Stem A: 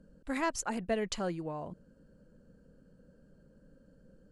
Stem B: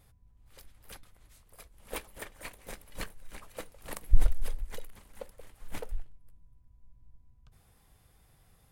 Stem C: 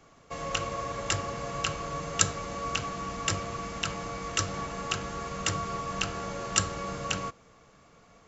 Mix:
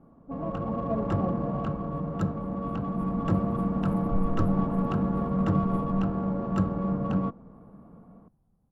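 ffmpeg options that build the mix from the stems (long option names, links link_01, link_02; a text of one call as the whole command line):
ffmpeg -i stem1.wav -i stem2.wav -i stem3.wav -filter_complex "[0:a]lowpass=frequency=700:width_type=q:width=3.4,volume=-11.5dB,asplit=2[link_01][link_02];[1:a]aexciter=amount=7.5:drive=7.5:freq=6800,asoftclip=type=tanh:threshold=-20dB,volume=-8dB[link_03];[2:a]volume=0.5dB[link_04];[link_02]apad=whole_len=384465[link_05];[link_03][link_05]sidechaincompress=threshold=-56dB:ratio=8:attack=16:release=1300[link_06];[link_01][link_06][link_04]amix=inputs=3:normalize=0,dynaudnorm=framelen=100:gausssize=17:maxgain=7dB,firequalizer=gain_entry='entry(110,0);entry(200,12);entry(400,-1);entry(940,-2);entry(2100,-22);entry(3900,-24);entry(6500,-30);entry(10000,-11)':delay=0.05:min_phase=1,adynamicsmooth=sensitivity=4:basefreq=2800" out.wav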